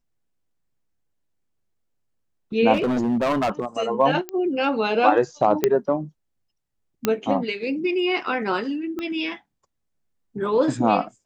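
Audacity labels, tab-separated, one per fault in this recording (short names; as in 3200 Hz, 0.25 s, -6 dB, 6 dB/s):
2.730000	3.650000	clipped -18 dBFS
4.290000	4.290000	pop -14 dBFS
5.640000	5.640000	pop -5 dBFS
7.050000	7.050000	pop -6 dBFS
8.990000	8.990000	pop -18 dBFS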